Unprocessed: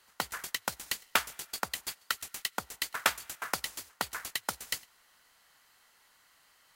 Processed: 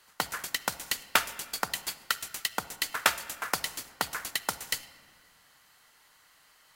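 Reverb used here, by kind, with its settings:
rectangular room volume 2,500 cubic metres, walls mixed, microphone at 0.48 metres
level +3 dB

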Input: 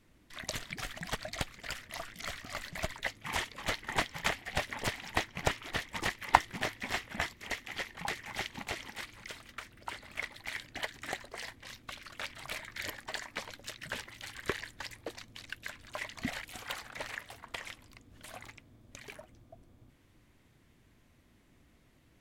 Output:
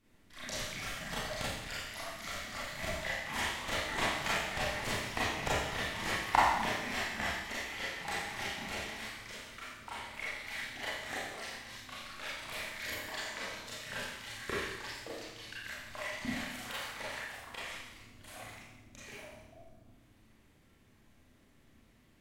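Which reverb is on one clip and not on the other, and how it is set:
four-comb reverb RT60 1 s, combs from 28 ms, DRR −8.5 dB
level −8 dB

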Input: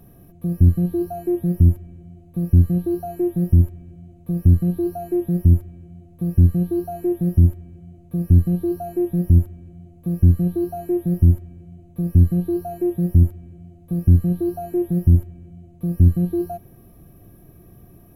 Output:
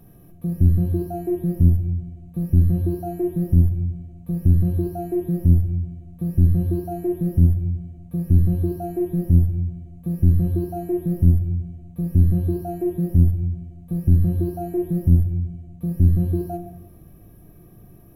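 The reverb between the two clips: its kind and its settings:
rectangular room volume 230 cubic metres, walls mixed, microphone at 0.5 metres
level −2 dB

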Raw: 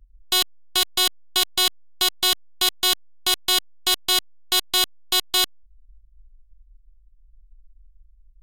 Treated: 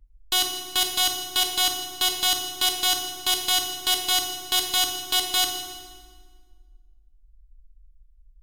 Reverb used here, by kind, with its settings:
feedback delay network reverb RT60 1.6 s, low-frequency decay 1.45×, high-frequency decay 0.85×, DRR 2 dB
level −3 dB

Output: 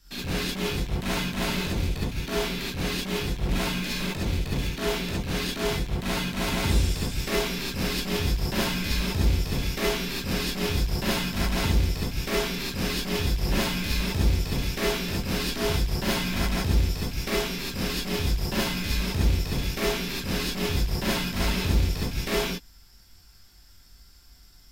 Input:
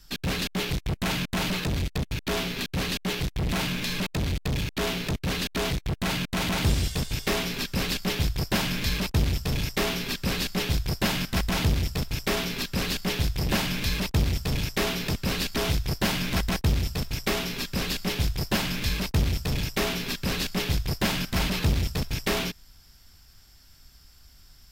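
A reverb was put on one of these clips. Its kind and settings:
reverb whose tail is shaped and stops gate 90 ms rising, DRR −6 dB
level −7 dB

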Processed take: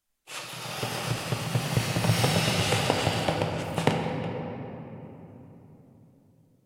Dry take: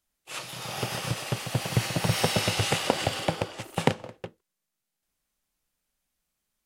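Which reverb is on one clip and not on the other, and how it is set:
rectangular room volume 220 cubic metres, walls hard, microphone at 0.43 metres
level −1.5 dB

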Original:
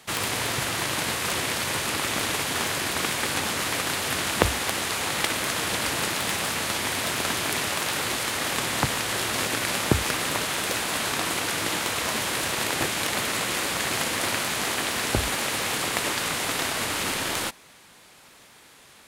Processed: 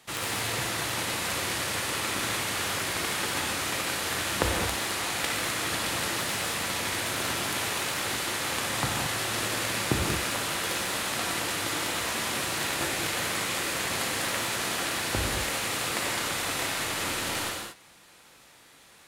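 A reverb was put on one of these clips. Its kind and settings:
reverb whose tail is shaped and stops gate 250 ms flat, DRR −1 dB
level −6.5 dB

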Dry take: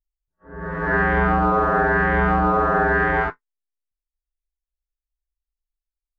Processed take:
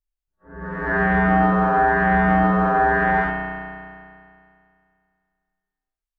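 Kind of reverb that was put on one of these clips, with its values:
spring reverb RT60 2.3 s, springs 32 ms, chirp 25 ms, DRR −1.5 dB
level −3 dB

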